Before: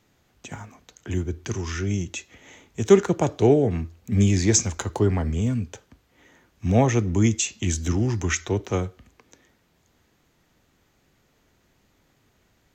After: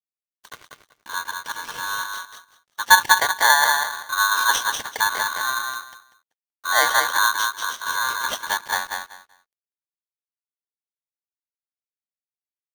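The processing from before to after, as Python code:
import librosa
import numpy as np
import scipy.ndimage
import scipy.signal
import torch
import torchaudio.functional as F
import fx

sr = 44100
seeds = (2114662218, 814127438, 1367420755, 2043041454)

p1 = fx.freq_compress(x, sr, knee_hz=2400.0, ratio=1.5)
p2 = scipy.signal.sosfilt(scipy.signal.butter(4, 140.0, 'highpass', fs=sr, output='sos'), p1)
p3 = fx.peak_eq(p2, sr, hz=1200.0, db=-13.5, octaves=0.51)
p4 = np.sign(p3) * np.maximum(np.abs(p3) - 10.0 ** (-42.0 / 20.0), 0.0)
p5 = fx.dynamic_eq(p4, sr, hz=4100.0, q=1.3, threshold_db=-44.0, ratio=4.0, max_db=-6)
p6 = p5 + fx.echo_feedback(p5, sr, ms=192, feedback_pct=20, wet_db=-4.5, dry=0)
p7 = p6 * np.sign(np.sin(2.0 * np.pi * 1300.0 * np.arange(len(p6)) / sr))
y = p7 * librosa.db_to_amplitude(2.0)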